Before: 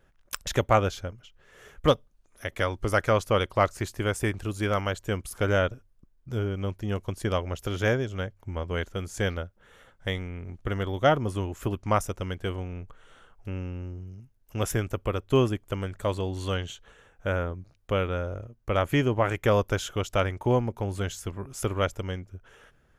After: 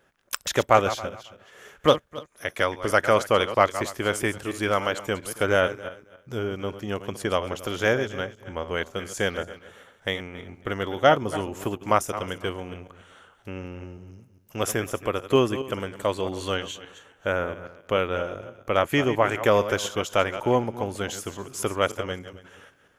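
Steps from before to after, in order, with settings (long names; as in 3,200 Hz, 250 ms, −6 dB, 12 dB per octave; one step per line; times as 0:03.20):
feedback delay that plays each chunk backwards 137 ms, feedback 41%, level −12 dB
high-pass filter 140 Hz 6 dB per octave
low-shelf EQ 180 Hz −8 dB
level +4.5 dB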